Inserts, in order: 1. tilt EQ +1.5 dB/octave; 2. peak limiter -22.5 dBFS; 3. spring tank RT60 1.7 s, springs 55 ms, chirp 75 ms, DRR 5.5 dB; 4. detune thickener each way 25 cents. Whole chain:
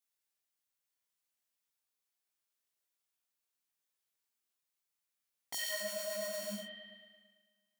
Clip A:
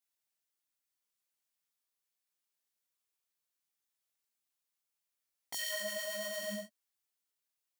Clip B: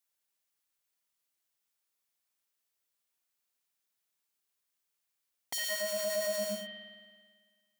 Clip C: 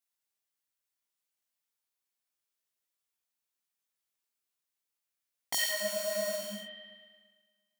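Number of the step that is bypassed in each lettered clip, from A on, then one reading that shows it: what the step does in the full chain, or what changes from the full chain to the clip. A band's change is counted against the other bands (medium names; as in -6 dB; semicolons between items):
3, momentary loudness spread change -8 LU; 4, 500 Hz band +3.0 dB; 2, mean gain reduction 4.5 dB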